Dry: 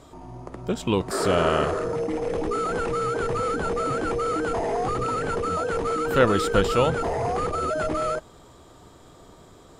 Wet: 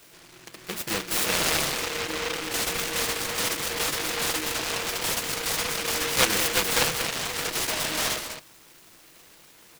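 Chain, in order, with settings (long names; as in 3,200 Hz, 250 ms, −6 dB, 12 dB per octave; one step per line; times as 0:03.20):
RIAA equalisation recording
mains-hum notches 60/120/180/240/300/360/420/480 Hz
comb filter 6.1 ms, depth 82%
far-end echo of a speakerphone 200 ms, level −8 dB
short delay modulated by noise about 1,900 Hz, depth 0.4 ms
level −5 dB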